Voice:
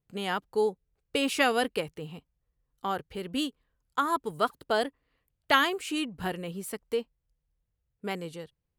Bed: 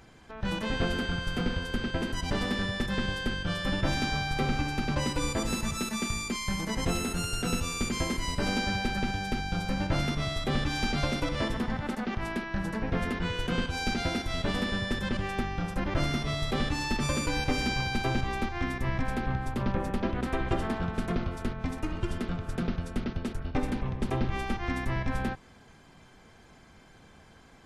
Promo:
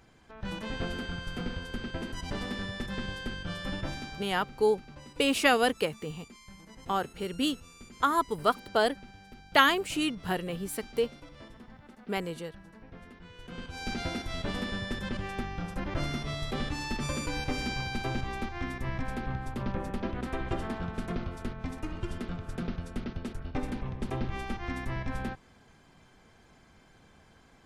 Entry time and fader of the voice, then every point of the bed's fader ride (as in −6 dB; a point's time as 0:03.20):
4.05 s, +1.5 dB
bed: 0:03.76 −5.5 dB
0:04.49 −19.5 dB
0:13.28 −19.5 dB
0:13.94 −4 dB